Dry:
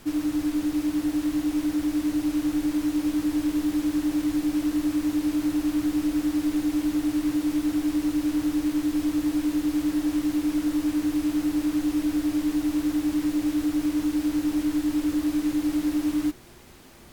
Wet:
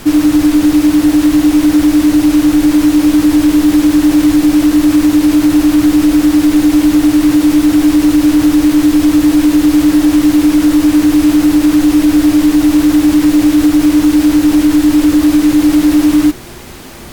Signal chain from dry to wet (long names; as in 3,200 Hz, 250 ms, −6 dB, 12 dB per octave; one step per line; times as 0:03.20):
boost into a limiter +19.5 dB
level −1 dB